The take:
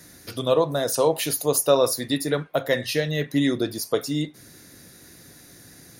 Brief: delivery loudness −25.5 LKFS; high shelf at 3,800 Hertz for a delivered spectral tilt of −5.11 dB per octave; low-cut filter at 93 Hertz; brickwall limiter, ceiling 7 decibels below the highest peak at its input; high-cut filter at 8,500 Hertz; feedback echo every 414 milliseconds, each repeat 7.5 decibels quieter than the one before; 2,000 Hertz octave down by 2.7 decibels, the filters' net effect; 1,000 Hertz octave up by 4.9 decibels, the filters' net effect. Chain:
high-pass filter 93 Hz
low-pass filter 8,500 Hz
parametric band 1,000 Hz +7.5 dB
parametric band 2,000 Hz −3.5 dB
high-shelf EQ 3,800 Hz −8.5 dB
brickwall limiter −11.5 dBFS
repeating echo 414 ms, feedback 42%, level −7.5 dB
level −1 dB

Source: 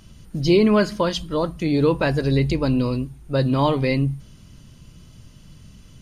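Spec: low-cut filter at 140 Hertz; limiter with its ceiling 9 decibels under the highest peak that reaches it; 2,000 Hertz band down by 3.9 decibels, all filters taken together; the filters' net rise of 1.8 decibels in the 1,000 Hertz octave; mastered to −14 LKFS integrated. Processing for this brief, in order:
high-pass filter 140 Hz
parametric band 1,000 Hz +3.5 dB
parametric band 2,000 Hz −6.5 dB
level +11.5 dB
brickwall limiter −4 dBFS

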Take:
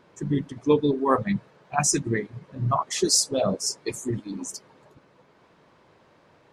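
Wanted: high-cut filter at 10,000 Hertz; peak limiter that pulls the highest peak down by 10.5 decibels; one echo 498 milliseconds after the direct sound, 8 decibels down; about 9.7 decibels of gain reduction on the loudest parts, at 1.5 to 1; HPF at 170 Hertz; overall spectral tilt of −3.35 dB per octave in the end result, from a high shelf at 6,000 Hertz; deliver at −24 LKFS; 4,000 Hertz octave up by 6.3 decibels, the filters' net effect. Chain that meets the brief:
high-pass filter 170 Hz
low-pass filter 10,000 Hz
parametric band 4,000 Hz +5 dB
high-shelf EQ 6,000 Hz +7.5 dB
downward compressor 1.5 to 1, threshold −39 dBFS
brickwall limiter −22 dBFS
single-tap delay 498 ms −8 dB
level +9.5 dB

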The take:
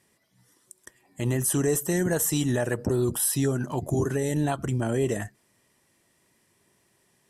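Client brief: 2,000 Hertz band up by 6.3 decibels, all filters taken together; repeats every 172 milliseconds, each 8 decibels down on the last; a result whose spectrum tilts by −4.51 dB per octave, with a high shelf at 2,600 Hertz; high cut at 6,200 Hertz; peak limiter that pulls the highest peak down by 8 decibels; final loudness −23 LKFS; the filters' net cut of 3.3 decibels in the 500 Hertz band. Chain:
low-pass filter 6,200 Hz
parametric band 500 Hz −5 dB
parametric band 2,000 Hz +5.5 dB
high-shelf EQ 2,600 Hz +6 dB
brickwall limiter −20.5 dBFS
repeating echo 172 ms, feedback 40%, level −8 dB
level +6.5 dB

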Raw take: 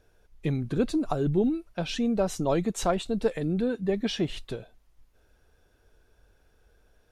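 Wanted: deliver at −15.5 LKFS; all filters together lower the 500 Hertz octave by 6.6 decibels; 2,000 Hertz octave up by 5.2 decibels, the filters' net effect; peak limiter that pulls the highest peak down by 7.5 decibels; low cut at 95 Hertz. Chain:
high-pass filter 95 Hz
parametric band 500 Hz −9 dB
parametric band 2,000 Hz +7.5 dB
level +16 dB
brickwall limiter −5.5 dBFS

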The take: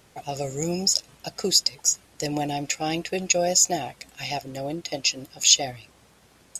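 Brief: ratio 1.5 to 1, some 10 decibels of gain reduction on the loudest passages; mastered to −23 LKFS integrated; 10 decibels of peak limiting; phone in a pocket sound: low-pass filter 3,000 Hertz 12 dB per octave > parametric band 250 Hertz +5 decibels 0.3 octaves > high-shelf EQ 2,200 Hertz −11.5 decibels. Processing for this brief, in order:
downward compressor 1.5 to 1, threshold −41 dBFS
brickwall limiter −23 dBFS
low-pass filter 3,000 Hz 12 dB per octave
parametric band 250 Hz +5 dB 0.3 octaves
high-shelf EQ 2,200 Hz −11.5 dB
level +15.5 dB

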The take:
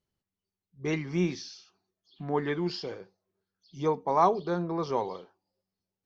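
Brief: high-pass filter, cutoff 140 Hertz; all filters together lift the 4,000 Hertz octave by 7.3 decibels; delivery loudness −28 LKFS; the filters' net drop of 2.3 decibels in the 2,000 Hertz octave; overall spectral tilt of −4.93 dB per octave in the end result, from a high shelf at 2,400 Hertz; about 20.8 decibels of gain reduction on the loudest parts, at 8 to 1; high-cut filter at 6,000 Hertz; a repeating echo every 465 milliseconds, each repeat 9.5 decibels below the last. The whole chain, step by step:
high-pass filter 140 Hz
low-pass filter 6,000 Hz
parametric band 2,000 Hz −7.5 dB
high-shelf EQ 2,400 Hz +6.5 dB
parametric band 4,000 Hz +6 dB
downward compressor 8 to 1, threshold −40 dBFS
repeating echo 465 ms, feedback 33%, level −9.5 dB
level +17 dB

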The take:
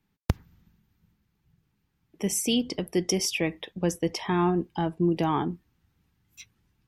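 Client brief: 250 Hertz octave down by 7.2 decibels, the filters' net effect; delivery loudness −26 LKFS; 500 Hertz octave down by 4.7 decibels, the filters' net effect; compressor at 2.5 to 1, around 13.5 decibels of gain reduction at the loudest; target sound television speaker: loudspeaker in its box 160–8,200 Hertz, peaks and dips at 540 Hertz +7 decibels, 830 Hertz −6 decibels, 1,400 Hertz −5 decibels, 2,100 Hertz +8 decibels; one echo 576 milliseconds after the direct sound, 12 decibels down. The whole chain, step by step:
parametric band 250 Hz −9 dB
parametric band 500 Hz −5 dB
downward compressor 2.5 to 1, threshold −42 dBFS
loudspeaker in its box 160–8,200 Hz, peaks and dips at 540 Hz +7 dB, 830 Hz −6 dB, 1,400 Hz −5 dB, 2,100 Hz +8 dB
single-tap delay 576 ms −12 dB
level +15.5 dB

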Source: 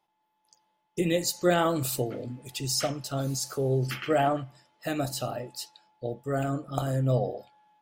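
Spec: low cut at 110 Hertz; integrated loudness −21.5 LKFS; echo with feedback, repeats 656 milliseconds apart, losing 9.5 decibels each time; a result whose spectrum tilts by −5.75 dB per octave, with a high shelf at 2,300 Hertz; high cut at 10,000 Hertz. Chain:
high-pass filter 110 Hz
low-pass filter 10,000 Hz
high-shelf EQ 2,300 Hz −6 dB
repeating echo 656 ms, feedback 33%, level −9.5 dB
level +8.5 dB

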